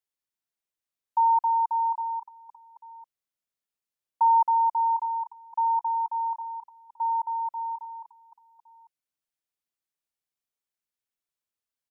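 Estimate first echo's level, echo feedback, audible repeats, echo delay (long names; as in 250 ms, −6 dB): −14.0 dB, repeats not evenly spaced, 2, 567 ms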